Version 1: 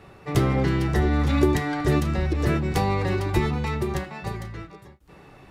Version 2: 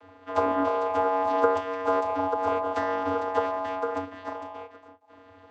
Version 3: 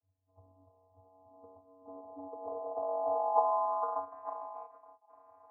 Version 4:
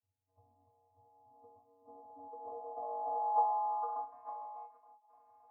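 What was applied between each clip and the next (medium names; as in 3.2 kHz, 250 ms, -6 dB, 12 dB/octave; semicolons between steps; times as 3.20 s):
dynamic bell 1.8 kHz, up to -4 dB, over -42 dBFS, Q 1.1; ring modulator 810 Hz; vocoder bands 16, square 93.6 Hz
cascade formant filter a; low-pass sweep 100 Hz -> 1.9 kHz, 0.92–4.31 s; trim +3.5 dB
feedback comb 120 Hz, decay 0.18 s, harmonics all, mix 100%; trim +2.5 dB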